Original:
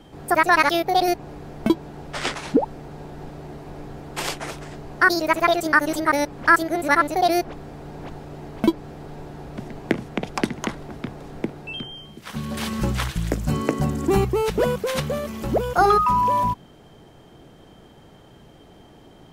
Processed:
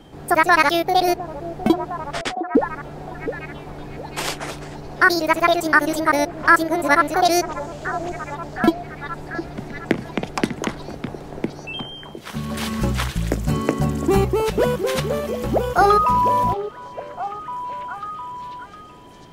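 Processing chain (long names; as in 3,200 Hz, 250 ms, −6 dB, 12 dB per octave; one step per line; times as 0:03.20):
0:02.21–0:02.66: noise gate −24 dBFS, range −44 dB
0:07.25–0:08.35: parametric band 6,900 Hz +14 dB 0.77 octaves
echo through a band-pass that steps 708 ms, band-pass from 490 Hz, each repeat 0.7 octaves, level −8 dB
level +2 dB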